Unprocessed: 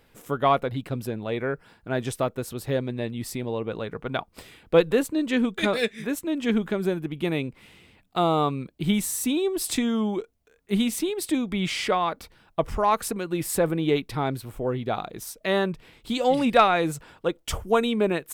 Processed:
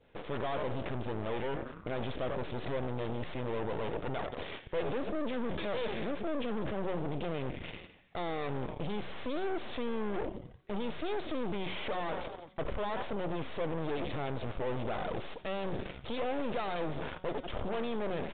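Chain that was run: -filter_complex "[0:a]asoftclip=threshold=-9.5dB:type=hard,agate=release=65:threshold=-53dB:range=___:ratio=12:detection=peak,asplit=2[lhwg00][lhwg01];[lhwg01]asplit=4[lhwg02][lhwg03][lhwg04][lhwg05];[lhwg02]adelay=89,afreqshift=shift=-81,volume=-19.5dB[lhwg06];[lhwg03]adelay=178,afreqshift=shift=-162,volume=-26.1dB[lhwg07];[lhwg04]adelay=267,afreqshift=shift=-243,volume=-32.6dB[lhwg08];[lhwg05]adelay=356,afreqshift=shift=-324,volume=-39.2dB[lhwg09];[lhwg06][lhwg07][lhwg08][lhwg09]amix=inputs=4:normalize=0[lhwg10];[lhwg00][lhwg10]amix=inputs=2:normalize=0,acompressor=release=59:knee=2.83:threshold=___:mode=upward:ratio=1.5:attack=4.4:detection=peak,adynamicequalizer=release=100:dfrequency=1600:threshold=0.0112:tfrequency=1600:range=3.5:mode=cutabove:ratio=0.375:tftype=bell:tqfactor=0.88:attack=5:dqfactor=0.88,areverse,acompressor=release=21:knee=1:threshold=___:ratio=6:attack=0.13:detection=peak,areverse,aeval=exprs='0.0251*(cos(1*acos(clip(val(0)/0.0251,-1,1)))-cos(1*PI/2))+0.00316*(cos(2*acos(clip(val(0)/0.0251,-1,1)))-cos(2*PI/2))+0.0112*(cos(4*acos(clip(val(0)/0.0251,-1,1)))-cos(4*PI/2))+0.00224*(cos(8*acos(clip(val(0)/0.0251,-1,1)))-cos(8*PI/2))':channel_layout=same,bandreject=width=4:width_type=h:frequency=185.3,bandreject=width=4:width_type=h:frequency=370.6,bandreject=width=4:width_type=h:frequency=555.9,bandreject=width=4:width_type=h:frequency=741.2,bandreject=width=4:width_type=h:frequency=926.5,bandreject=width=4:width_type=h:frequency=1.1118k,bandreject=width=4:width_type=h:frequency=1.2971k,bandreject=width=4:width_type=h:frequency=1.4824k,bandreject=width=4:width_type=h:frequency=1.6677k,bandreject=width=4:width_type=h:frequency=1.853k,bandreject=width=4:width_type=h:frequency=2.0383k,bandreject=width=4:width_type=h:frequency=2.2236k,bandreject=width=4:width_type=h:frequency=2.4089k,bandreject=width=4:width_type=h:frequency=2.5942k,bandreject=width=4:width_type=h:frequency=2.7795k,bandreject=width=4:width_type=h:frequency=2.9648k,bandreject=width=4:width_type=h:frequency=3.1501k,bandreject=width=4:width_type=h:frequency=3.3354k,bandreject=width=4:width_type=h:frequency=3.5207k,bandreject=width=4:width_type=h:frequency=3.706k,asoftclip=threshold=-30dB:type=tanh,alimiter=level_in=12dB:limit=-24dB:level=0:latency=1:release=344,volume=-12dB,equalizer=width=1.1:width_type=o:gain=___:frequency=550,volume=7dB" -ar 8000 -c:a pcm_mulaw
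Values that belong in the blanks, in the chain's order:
-26dB, -45dB, -37dB, 6.5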